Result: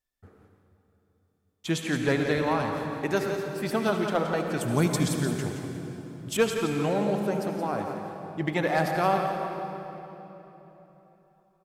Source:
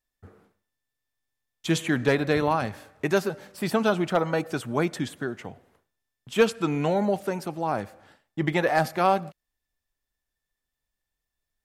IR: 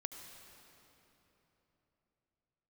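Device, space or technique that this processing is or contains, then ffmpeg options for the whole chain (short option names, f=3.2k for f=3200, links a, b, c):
cave: -filter_complex "[0:a]asettb=1/sr,asplit=3[a][b][c];[a]atrim=end=4.614[d];[b]atrim=start=4.61:end=6.37,asetpts=PTS-STARTPTS,afade=t=in:d=0.004:c=qsin,afade=t=out:st=1.756:d=0.004:c=qsin,bass=f=250:g=11,treble=f=4k:g=14[e];[c]atrim=start=6.366[f];[d][e]acrossfade=d=0.004:c1=hsin:c2=qsin[g];[g][f]acrossfade=d=0.004:c1=qsin:c2=hsin,aecho=1:1:172:0.376[h];[1:a]atrim=start_sample=2205[i];[h][i]afir=irnorm=-1:irlink=0"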